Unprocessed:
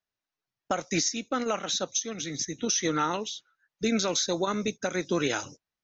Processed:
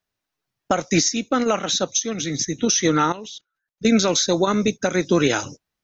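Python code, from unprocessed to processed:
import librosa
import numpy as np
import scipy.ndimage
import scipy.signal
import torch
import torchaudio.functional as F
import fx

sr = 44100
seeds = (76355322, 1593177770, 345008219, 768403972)

y = fx.level_steps(x, sr, step_db=22, at=(3.12, 3.85))
y = fx.low_shelf(y, sr, hz=380.0, db=4.5)
y = y * librosa.db_to_amplitude(7.0)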